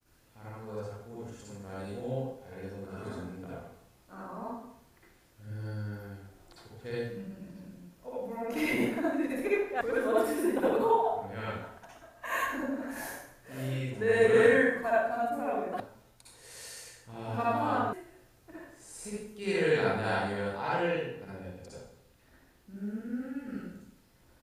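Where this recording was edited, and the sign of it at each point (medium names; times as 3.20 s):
9.81 s: sound stops dead
15.80 s: sound stops dead
17.93 s: sound stops dead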